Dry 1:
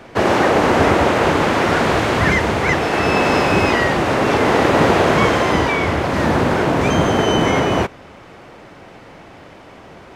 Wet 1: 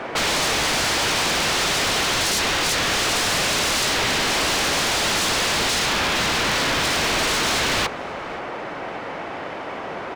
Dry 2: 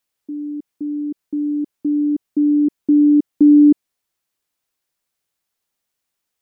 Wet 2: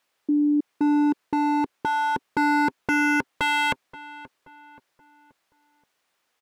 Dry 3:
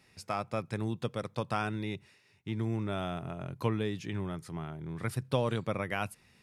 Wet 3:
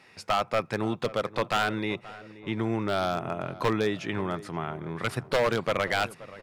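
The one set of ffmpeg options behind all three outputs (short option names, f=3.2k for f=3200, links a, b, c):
-filter_complex "[0:a]asplit=2[a][b];[b]highpass=f=720:p=1,volume=20dB,asoftclip=type=tanh:threshold=-1dB[c];[a][c]amix=inputs=2:normalize=0,lowpass=f=1.7k:p=1,volume=-6dB,aeval=exprs='0.15*(abs(mod(val(0)/0.15+3,4)-2)-1)':c=same,asplit=2[d][e];[e]adelay=528,lowpass=f=1.9k:p=1,volume=-17dB,asplit=2[f][g];[g]adelay=528,lowpass=f=1.9k:p=1,volume=0.45,asplit=2[h][i];[i]adelay=528,lowpass=f=1.9k:p=1,volume=0.45,asplit=2[j][k];[k]adelay=528,lowpass=f=1.9k:p=1,volume=0.45[l];[d][f][h][j][l]amix=inputs=5:normalize=0"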